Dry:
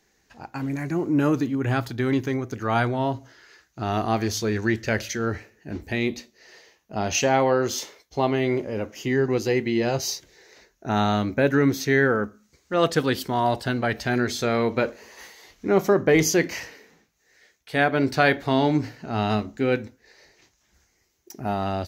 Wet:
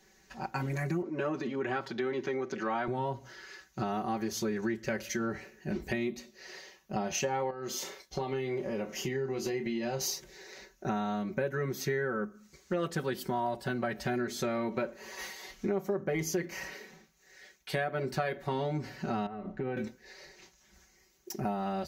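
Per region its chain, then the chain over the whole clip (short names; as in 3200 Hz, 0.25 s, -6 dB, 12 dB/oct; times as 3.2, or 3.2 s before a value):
1.02–2.88 transient shaper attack -5 dB, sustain +2 dB + three-band isolator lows -18 dB, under 220 Hz, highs -24 dB, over 5800 Hz
7.5–10.01 compressor 3:1, threshold -32 dBFS + doubler 30 ms -9 dB
19.26–19.77 LPF 1500 Hz + comb 6.8 ms, depth 38% + compressor 10:1, threshold -30 dBFS
whole clip: comb 5.3 ms, depth 91%; dynamic EQ 4000 Hz, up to -6 dB, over -39 dBFS, Q 0.75; compressor 6:1, threshold -30 dBFS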